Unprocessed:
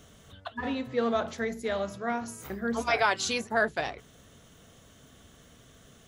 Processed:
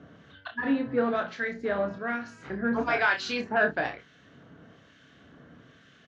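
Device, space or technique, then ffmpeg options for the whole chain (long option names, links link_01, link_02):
guitar amplifier with harmonic tremolo: -filter_complex "[0:a]acrossover=split=1500[link_01][link_02];[link_01]aeval=exprs='val(0)*(1-0.7/2+0.7/2*cos(2*PI*1.1*n/s))':channel_layout=same[link_03];[link_02]aeval=exprs='val(0)*(1-0.7/2-0.7/2*cos(2*PI*1.1*n/s))':channel_layout=same[link_04];[link_03][link_04]amix=inputs=2:normalize=0,asoftclip=type=tanh:threshold=-22dB,highpass=100,equalizer=frequency=160:width_type=q:width=4:gain=4,equalizer=frequency=290:width_type=q:width=4:gain=7,equalizer=frequency=1600:width_type=q:width=4:gain=8,equalizer=frequency=3500:width_type=q:width=4:gain=-5,lowpass=frequency=4300:width=0.5412,lowpass=frequency=4300:width=1.3066,aecho=1:1:29|62:0.531|0.133,volume=3dB"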